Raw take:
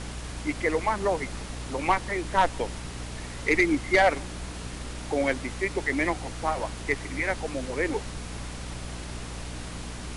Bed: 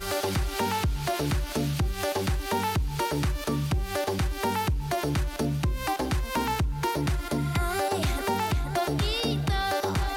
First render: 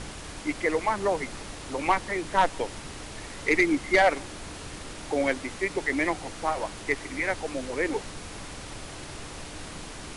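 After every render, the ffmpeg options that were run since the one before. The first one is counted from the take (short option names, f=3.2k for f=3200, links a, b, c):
-af "bandreject=f=60:t=h:w=4,bandreject=f=120:t=h:w=4,bandreject=f=180:t=h:w=4,bandreject=f=240:t=h:w=4"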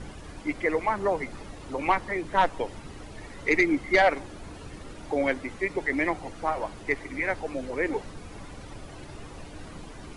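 -af "afftdn=nr=11:nf=-41"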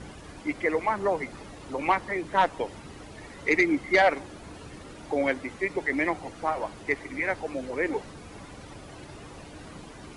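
-af "highpass=f=78:p=1"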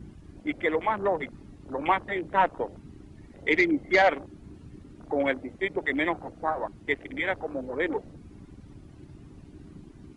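-af "afwtdn=0.0178"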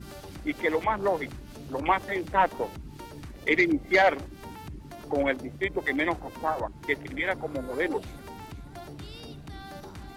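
-filter_complex "[1:a]volume=-16.5dB[a];[0:a][a]amix=inputs=2:normalize=0"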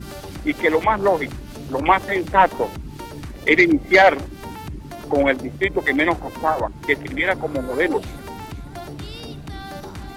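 -af "volume=8.5dB"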